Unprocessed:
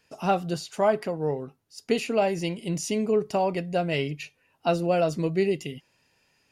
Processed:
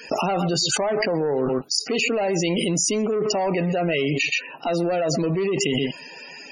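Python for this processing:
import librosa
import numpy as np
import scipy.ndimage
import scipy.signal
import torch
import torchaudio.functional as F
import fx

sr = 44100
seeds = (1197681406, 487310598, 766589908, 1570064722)

y = scipy.signal.sosfilt(scipy.signal.butter(2, 220.0, 'highpass', fs=sr, output='sos'), x)
y = fx.high_shelf(y, sr, hz=3900.0, db=2.0)
y = fx.leveller(y, sr, passes=2)
y = y + 10.0 ** (-22.0 / 20.0) * np.pad(y, (int(126 * sr / 1000.0), 0))[:len(y)]
y = fx.spec_topn(y, sr, count=64)
y = fx.env_flatten(y, sr, amount_pct=100)
y = y * librosa.db_to_amplitude(-7.5)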